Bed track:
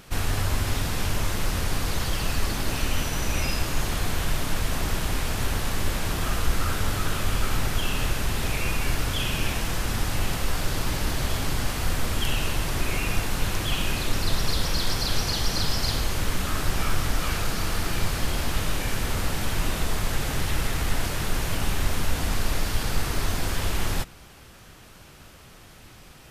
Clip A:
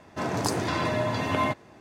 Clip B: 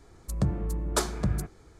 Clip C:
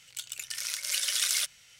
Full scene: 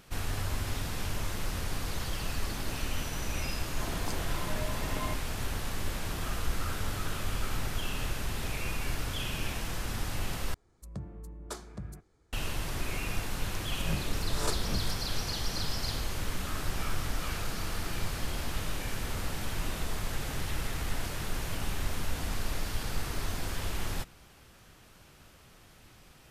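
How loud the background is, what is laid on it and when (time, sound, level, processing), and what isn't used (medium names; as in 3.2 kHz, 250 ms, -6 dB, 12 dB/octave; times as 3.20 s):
bed track -8 dB
3.62 s: add A -12.5 dB
10.54 s: replace with B -14 dB
13.51 s: add B -9.5 dB + reverse spectral sustain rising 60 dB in 0.54 s
not used: C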